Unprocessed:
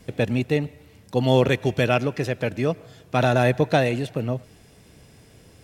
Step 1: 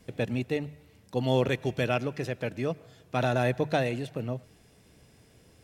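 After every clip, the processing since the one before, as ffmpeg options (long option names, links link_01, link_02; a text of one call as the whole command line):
ffmpeg -i in.wav -af "bandreject=frequency=50:width_type=h:width=6,bandreject=frequency=100:width_type=h:width=6,bandreject=frequency=150:width_type=h:width=6,volume=-7dB" out.wav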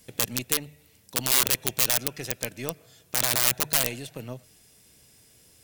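ffmpeg -i in.wav -af "aeval=exprs='(mod(8.91*val(0)+1,2)-1)/8.91':channel_layout=same,crystalizer=i=5:c=0,aeval=exprs='1.26*(cos(1*acos(clip(val(0)/1.26,-1,1)))-cos(1*PI/2))+0.447*(cos(6*acos(clip(val(0)/1.26,-1,1)))-cos(6*PI/2))+0.112*(cos(8*acos(clip(val(0)/1.26,-1,1)))-cos(8*PI/2))':channel_layout=same,volume=-5.5dB" out.wav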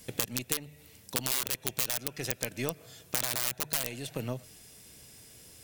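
ffmpeg -i in.wav -af "acompressor=threshold=-33dB:ratio=3,volume=4dB" out.wav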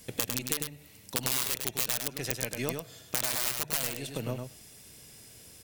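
ffmpeg -i in.wav -af "aecho=1:1:102:0.562" out.wav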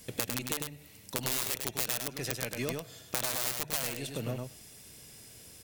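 ffmpeg -i in.wav -af "aeval=exprs='clip(val(0),-1,0.0447)':channel_layout=same" out.wav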